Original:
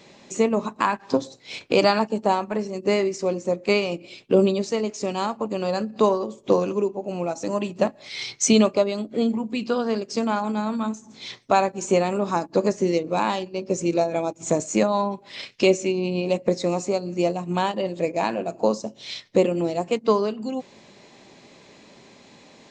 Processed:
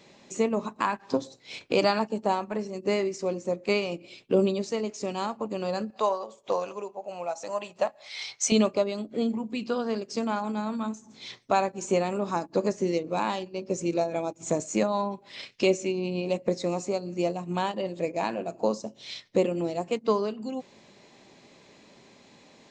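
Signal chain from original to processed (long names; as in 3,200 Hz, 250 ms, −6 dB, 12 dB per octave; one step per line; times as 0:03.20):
0:05.90–0:08.52: low shelf with overshoot 450 Hz −12 dB, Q 1.5
level −5 dB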